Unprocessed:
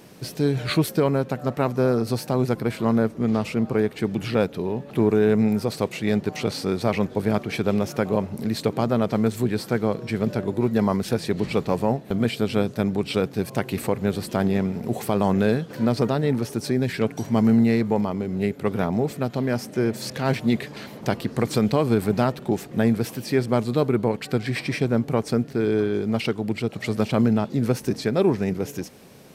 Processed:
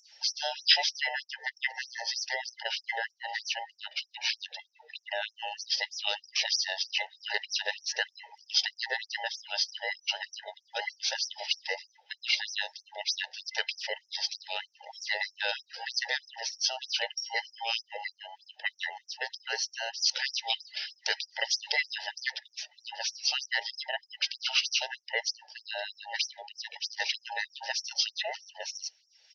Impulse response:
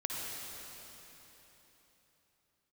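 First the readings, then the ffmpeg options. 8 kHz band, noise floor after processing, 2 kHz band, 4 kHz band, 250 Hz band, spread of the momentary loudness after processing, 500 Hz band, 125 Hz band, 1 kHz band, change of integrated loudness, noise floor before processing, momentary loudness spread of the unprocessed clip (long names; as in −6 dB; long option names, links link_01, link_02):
+2.5 dB, −71 dBFS, +1.5 dB, +7.5 dB, below −40 dB, 10 LU, −20.5 dB, below −40 dB, −9.0 dB, −8.0 dB, −42 dBFS, 6 LU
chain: -af "afftfilt=real='real(if(between(b,1,1008),(2*floor((b-1)/48)+1)*48-b,b),0)':imag='imag(if(between(b,1,1008),(2*floor((b-1)/48)+1)*48-b,b),0)*if(between(b,1,1008),-1,1)':win_size=2048:overlap=0.75,firequalizer=gain_entry='entry(150,0);entry(300,-5);entry(1000,-16);entry(1700,5);entry(5600,13);entry(8000,-20);entry(12000,-30)':delay=0.05:min_phase=1,afftdn=noise_reduction=19:noise_floor=-40,asubboost=boost=7:cutoff=210,acompressor=mode=upward:threshold=-45dB:ratio=2.5,afftfilt=real='re*gte(b*sr/1024,410*pow(5400/410,0.5+0.5*sin(2*PI*3.2*pts/sr)))':imag='im*gte(b*sr/1024,410*pow(5400/410,0.5+0.5*sin(2*PI*3.2*pts/sr)))':win_size=1024:overlap=0.75,volume=-1.5dB"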